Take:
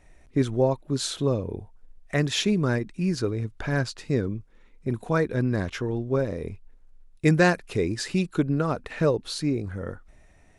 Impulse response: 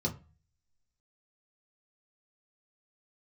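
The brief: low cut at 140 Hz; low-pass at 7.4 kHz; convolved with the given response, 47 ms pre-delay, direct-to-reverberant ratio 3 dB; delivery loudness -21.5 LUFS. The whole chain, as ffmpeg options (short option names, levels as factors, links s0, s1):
-filter_complex "[0:a]highpass=140,lowpass=7400,asplit=2[s0][s1];[1:a]atrim=start_sample=2205,adelay=47[s2];[s1][s2]afir=irnorm=-1:irlink=0,volume=0.422[s3];[s0][s3]amix=inputs=2:normalize=0,volume=0.891"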